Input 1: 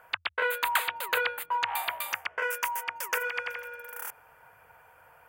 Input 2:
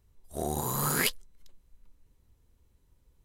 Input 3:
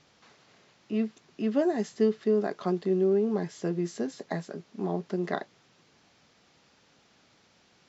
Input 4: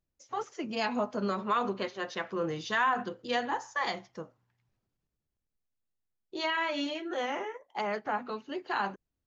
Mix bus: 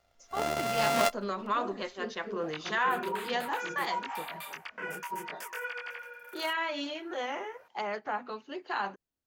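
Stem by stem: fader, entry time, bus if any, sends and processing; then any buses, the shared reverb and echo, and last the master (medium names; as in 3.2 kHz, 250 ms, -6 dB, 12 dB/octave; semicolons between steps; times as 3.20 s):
-0.5 dB, 2.40 s, no send, treble shelf 11 kHz -8.5 dB; peak limiter -24.5 dBFS, peak gain reduction 11 dB; detune thickener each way 22 cents
-2.5 dB, 0.00 s, no send, sorted samples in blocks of 64 samples; peaking EQ 700 Hz +6.5 dB 2.7 oct
-14.0 dB, 0.00 s, no send, phase randomisation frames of 50 ms
-1.0 dB, 0.00 s, no send, none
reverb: none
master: bass shelf 170 Hz -11.5 dB; loudspeaker Doppler distortion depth 0.12 ms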